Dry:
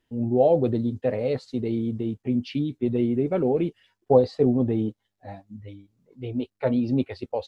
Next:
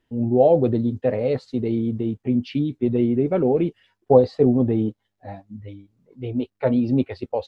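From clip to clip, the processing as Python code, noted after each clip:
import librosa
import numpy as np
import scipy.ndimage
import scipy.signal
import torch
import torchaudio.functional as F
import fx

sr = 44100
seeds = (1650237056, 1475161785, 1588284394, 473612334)

y = fx.high_shelf(x, sr, hz=4100.0, db=-7.5)
y = F.gain(torch.from_numpy(y), 3.5).numpy()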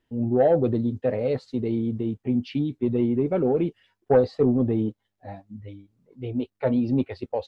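y = 10.0 ** (-6.5 / 20.0) * np.tanh(x / 10.0 ** (-6.5 / 20.0))
y = F.gain(torch.from_numpy(y), -2.5).numpy()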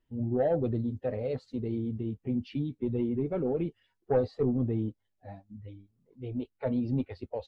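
y = fx.spec_quant(x, sr, step_db=15)
y = fx.low_shelf(y, sr, hz=78.0, db=12.0)
y = F.gain(torch.from_numpy(y), -8.0).numpy()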